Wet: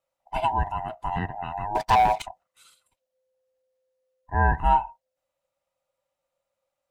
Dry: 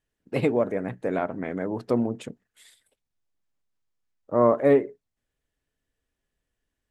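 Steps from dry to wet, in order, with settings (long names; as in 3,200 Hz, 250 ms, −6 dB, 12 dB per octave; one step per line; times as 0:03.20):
neighbouring bands swapped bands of 500 Hz
0:01.75–0:02.22: leveller curve on the samples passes 3
level −1.5 dB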